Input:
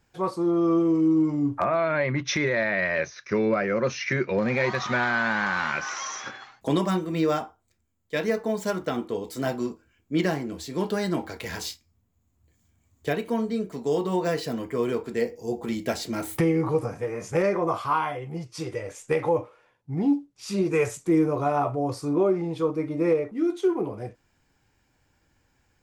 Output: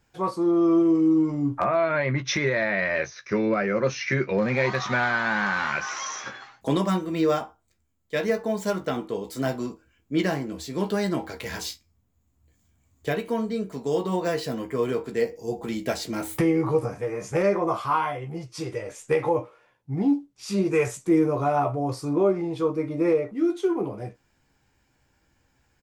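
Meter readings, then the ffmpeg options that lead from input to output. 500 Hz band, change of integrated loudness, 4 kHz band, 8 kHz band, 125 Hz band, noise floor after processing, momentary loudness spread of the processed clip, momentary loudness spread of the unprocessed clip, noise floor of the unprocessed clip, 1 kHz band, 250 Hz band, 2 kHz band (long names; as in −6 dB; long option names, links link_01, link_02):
+0.5 dB, +0.5 dB, +0.5 dB, +0.5 dB, +0.5 dB, −69 dBFS, 10 LU, 10 LU, −69 dBFS, +1.0 dB, +1.0 dB, +0.5 dB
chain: -filter_complex "[0:a]asplit=2[link_01][link_02];[link_02]adelay=15,volume=-8.5dB[link_03];[link_01][link_03]amix=inputs=2:normalize=0"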